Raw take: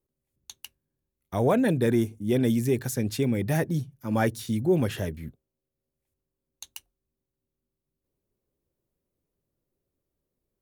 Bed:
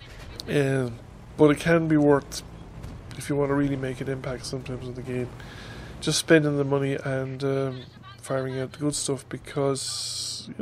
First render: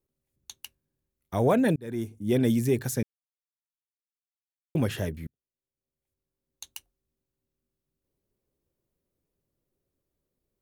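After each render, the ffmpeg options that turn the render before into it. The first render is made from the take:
-filter_complex "[0:a]asplit=5[s0][s1][s2][s3][s4];[s0]atrim=end=1.76,asetpts=PTS-STARTPTS,afade=t=out:st=1.756:d=0.004:c=hsin[s5];[s1]atrim=start=1.76:end=3.03,asetpts=PTS-STARTPTS,afade=t=in:d=0.57,afade=t=out:st=1.266:d=0.004:c=hsin[s6];[s2]atrim=start=3.03:end=4.75,asetpts=PTS-STARTPTS,volume=0[s7];[s3]atrim=start=4.75:end=5.27,asetpts=PTS-STARTPTS,afade=t=in:d=0.004:c=hsin,afade=t=out:st=0.516:d=0.004:c=hsin[s8];[s4]atrim=start=5.27,asetpts=PTS-STARTPTS,afade=t=in:d=1.42[s9];[s5][s6][s7][s8][s9]concat=n=5:v=0:a=1"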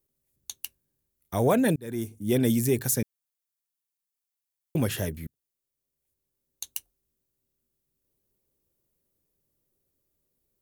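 -af "highshelf=f=6400:g=12"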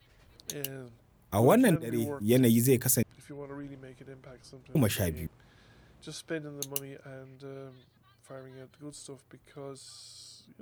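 -filter_complex "[1:a]volume=0.119[s0];[0:a][s0]amix=inputs=2:normalize=0"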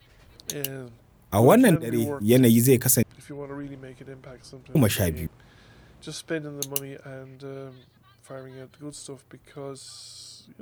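-af "volume=2"

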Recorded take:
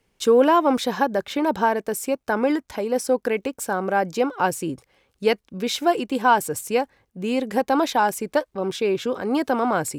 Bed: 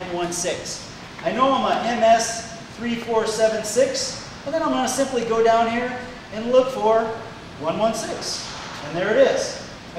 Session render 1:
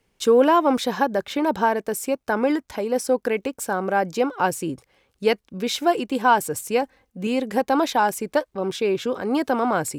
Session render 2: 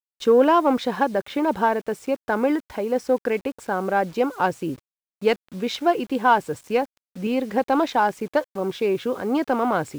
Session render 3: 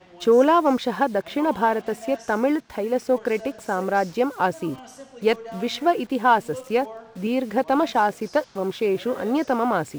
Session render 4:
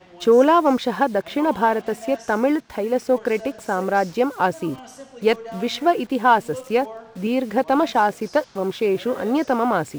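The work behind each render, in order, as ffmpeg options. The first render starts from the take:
-filter_complex "[0:a]asettb=1/sr,asplit=3[s0][s1][s2];[s0]atrim=end=6.824[s3];[s1]atrim=start=6.82:end=7.27,asetpts=PTS-STARTPTS,afade=t=in:d=0.004:c=qsin,afade=t=out:st=0.446:d=0.004:c=qsin,aecho=1:1:3.9:0.65,atrim=end_sample=19845[s4];[s2]atrim=start=7.266[s5];[s3][s4]acrossfade=d=0.004:c1=hsin:c2=qsin[s6];[s6][s5]acrossfade=d=0.004:c1=qsin:c2=hsin"
-af "adynamicsmooth=sensitivity=1:basefreq=3500,acrusher=bits=7:mix=0:aa=0.000001"
-filter_complex "[1:a]volume=0.0891[s0];[0:a][s0]amix=inputs=2:normalize=0"
-af "volume=1.26"

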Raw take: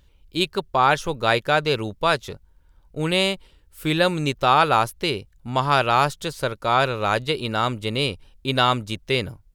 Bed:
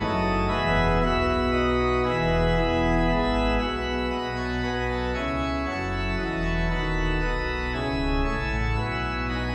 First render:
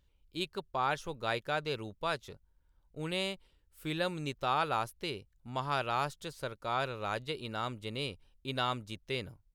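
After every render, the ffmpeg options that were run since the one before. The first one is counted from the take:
-af "volume=0.2"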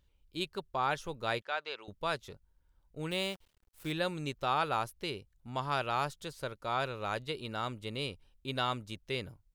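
-filter_complex "[0:a]asettb=1/sr,asplit=3[s0][s1][s2];[s0]atrim=end=1.424[s3];[s1]atrim=start=1.42:end=1.88,asetpts=PTS-STARTPTS,afade=t=in:d=0.004:c=qsin,afade=t=out:st=0.456:d=0.004:c=qsin,highpass=700,lowpass=4300[s4];[s2]atrim=start=1.876[s5];[s3][s4]acrossfade=d=0.004:c1=hsin:c2=qsin[s6];[s6][s5]acrossfade=d=0.004:c1=qsin:c2=hsin,asettb=1/sr,asplit=3[s7][s8][s9];[s7]atrim=end=3.114[s10];[s8]atrim=start=3.11:end=3.92,asetpts=PTS-STARTPTS,afade=t=in:d=0.004:c=qsin,afade=t=out:st=0.806:d=0.004:c=qsin,acrusher=bits=9:dc=4:mix=0:aa=0.000001[s11];[s9]atrim=start=3.916[s12];[s10][s11]acrossfade=d=0.004:c1=hsin:c2=qsin[s13];[s13][s12]acrossfade=d=0.004:c1=qsin:c2=hsin"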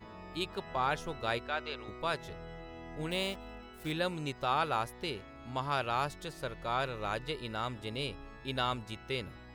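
-filter_complex "[1:a]volume=0.0596[s0];[0:a][s0]amix=inputs=2:normalize=0"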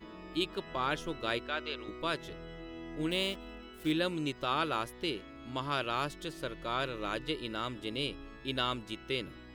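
-af "equalizer=f=100:t=o:w=0.33:g=-12,equalizer=f=315:t=o:w=0.33:g=9,equalizer=f=800:t=o:w=0.33:g=-8,equalizer=f=3150:t=o:w=0.33:g=6"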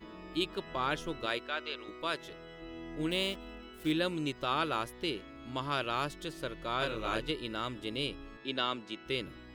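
-filter_complex "[0:a]asettb=1/sr,asplit=3[s0][s1][s2];[s0]atrim=end=1.264[s3];[s1]atrim=start=1.26:end=2.62,asetpts=PTS-STARTPTS,afade=t=in:d=0.004:c=qsin,afade=t=out:st=1.356:d=0.004:c=qsin,lowshelf=f=220:g=-10.5[s4];[s2]atrim=start=2.616[s5];[s3][s4]acrossfade=d=0.004:c1=hsin:c2=qsin[s6];[s6][s5]acrossfade=d=0.004:c1=qsin:c2=hsin,asettb=1/sr,asplit=3[s7][s8][s9];[s7]atrim=end=6.794[s10];[s8]atrim=start=6.79:end=7.31,asetpts=PTS-STARTPTS,afade=t=in:d=0.004:c=qsin,afade=t=out:st=0.516:d=0.004:c=qsin,asplit=2[s11][s12];[s12]adelay=27,volume=0.794[s13];[s11][s13]amix=inputs=2:normalize=0,atrim=end_sample=22932[s14];[s9]atrim=start=7.306[s15];[s10][s14]acrossfade=d=0.004:c1=hsin:c2=qsin[s16];[s16][s15]acrossfade=d=0.004:c1=qsin:c2=hsin,asettb=1/sr,asplit=3[s17][s18][s19];[s17]atrim=end=8.374[s20];[s18]atrim=start=8.37:end=9.06,asetpts=PTS-STARTPTS,afade=t=in:d=0.004:c=qsin,afade=t=out:st=0.686:d=0.004:c=qsin,acrossover=split=160 7200:gain=0.112 1 0.126[s21][s22][s23];[s21][s22][s23]amix=inputs=3:normalize=0[s24];[s19]atrim=start=9.056[s25];[s20][s24]acrossfade=d=0.004:c1=hsin:c2=qsin[s26];[s26][s25]acrossfade=d=0.004:c1=qsin:c2=hsin"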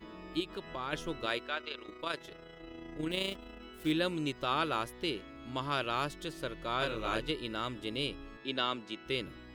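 -filter_complex "[0:a]asettb=1/sr,asplit=3[s0][s1][s2];[s0]atrim=end=0.404[s3];[s1]atrim=start=0.4:end=0.93,asetpts=PTS-STARTPTS,afade=t=in:d=0.004:c=qsin,afade=t=out:st=0.526:d=0.004:c=qsin,acompressor=threshold=0.0126:ratio=2:attack=3.2:release=140:knee=1:detection=peak[s4];[s2]atrim=start=0.926[s5];[s3][s4]acrossfade=d=0.004:c1=hsin:c2=qsin[s6];[s6][s5]acrossfade=d=0.004:c1=qsin:c2=hsin,asplit=3[s7][s8][s9];[s7]afade=t=out:st=1.55:d=0.02[s10];[s8]tremolo=f=28:d=0.519,afade=t=in:st=1.55:d=0.02,afade=t=out:st=3.6:d=0.02[s11];[s9]afade=t=in:st=3.6:d=0.02[s12];[s10][s11][s12]amix=inputs=3:normalize=0"

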